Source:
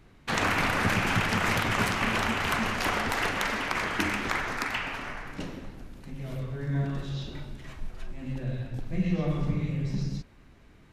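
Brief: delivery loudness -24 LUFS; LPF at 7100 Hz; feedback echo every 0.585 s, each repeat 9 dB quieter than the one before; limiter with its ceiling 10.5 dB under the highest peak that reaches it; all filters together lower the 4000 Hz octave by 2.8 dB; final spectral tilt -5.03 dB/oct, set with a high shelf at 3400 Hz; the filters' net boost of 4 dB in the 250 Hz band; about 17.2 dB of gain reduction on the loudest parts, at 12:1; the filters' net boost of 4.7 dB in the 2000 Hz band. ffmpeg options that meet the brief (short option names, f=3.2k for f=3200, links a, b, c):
-af "lowpass=7.1k,equalizer=f=250:t=o:g=5.5,equalizer=f=2k:t=o:g=8.5,highshelf=f=3.4k:g=-7.5,equalizer=f=4k:t=o:g=-3,acompressor=threshold=-37dB:ratio=12,alimiter=level_in=10dB:limit=-24dB:level=0:latency=1,volume=-10dB,aecho=1:1:585|1170|1755|2340:0.355|0.124|0.0435|0.0152,volume=18.5dB"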